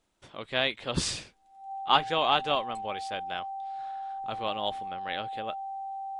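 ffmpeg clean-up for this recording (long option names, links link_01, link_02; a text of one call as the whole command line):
ffmpeg -i in.wav -af "bandreject=frequency=780:width=30" out.wav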